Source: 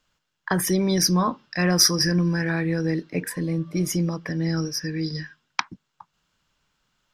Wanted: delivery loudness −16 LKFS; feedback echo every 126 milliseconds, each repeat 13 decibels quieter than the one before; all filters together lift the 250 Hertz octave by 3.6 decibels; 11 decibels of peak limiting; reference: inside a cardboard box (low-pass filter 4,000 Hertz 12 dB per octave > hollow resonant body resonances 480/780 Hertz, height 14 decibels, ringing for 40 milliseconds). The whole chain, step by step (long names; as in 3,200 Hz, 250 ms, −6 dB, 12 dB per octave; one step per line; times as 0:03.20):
parametric band 250 Hz +6.5 dB
brickwall limiter −14 dBFS
low-pass filter 4,000 Hz 12 dB per octave
repeating echo 126 ms, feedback 22%, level −13 dB
hollow resonant body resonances 480/780 Hz, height 14 dB, ringing for 40 ms
level +5.5 dB